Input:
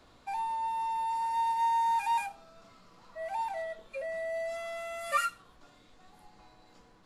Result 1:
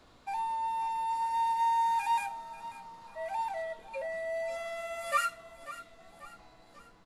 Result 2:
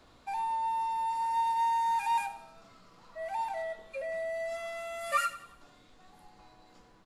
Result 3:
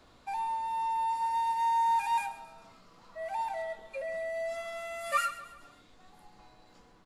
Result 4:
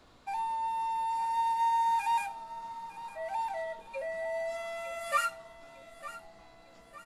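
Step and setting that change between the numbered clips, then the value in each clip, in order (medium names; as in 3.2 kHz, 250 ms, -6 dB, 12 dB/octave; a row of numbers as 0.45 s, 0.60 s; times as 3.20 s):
feedback delay, time: 540 ms, 92 ms, 135 ms, 905 ms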